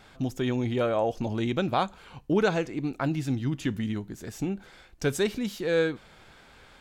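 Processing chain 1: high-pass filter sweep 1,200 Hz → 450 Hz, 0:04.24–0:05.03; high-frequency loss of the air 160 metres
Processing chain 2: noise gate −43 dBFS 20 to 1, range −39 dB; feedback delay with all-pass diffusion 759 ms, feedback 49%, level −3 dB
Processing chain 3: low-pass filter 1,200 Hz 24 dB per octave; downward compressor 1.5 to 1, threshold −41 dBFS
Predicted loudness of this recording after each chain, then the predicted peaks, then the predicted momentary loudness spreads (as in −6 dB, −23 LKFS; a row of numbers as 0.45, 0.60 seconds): −27.0, −27.0, −35.5 LKFS; −11.0, −10.5, −20.5 dBFS; 24, 6, 7 LU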